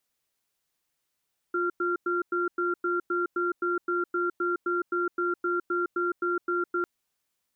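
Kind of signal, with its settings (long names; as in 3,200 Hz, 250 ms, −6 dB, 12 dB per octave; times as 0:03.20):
tone pair in a cadence 352 Hz, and 1,380 Hz, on 0.16 s, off 0.10 s, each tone −27 dBFS 5.30 s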